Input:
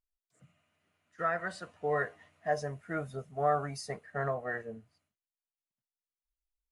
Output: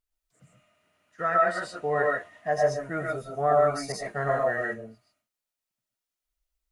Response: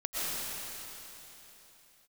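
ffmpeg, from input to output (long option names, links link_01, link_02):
-filter_complex "[1:a]atrim=start_sample=2205,afade=type=out:start_time=0.2:duration=0.01,atrim=end_sample=9261[link_01];[0:a][link_01]afir=irnorm=-1:irlink=0,asettb=1/sr,asplit=3[link_02][link_03][link_04];[link_02]atrim=end=3.924[link_05];[link_03]atrim=start=3.92:end=4.74,asetpts=PTS-STARTPTS,afade=type=in:duration=0.004:curve=qsin,afade=type=out:start_time=0.816:duration=0.004:curve=qsin,adynamicequalizer=threshold=0.00355:dfrequency=2400:dqfactor=0.7:tfrequency=2400:tqfactor=0.7:attack=5:release=100:ratio=0.375:range=3:mode=boostabove:tftype=highshelf[link_06];[link_04]atrim=start=4.736[link_07];[link_05][link_06]acrossfade=duration=0.004:curve1=hsin:curve2=qsin[link_08];[link_08][link_07]acrossfade=duration=0.004:curve1=qsin:curve2=hsin,volume=5.5dB"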